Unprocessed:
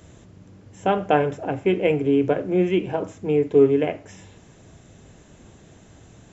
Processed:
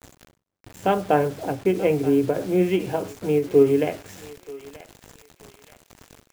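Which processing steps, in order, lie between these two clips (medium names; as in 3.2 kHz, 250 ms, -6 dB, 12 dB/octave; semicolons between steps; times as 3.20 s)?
0.94–2.40 s: peaking EQ 5.3 kHz -9 dB 2.2 oct; bit crusher 7-bit; thinning echo 930 ms, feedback 44%, high-pass 960 Hz, level -14 dB; endings held to a fixed fall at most 200 dB/s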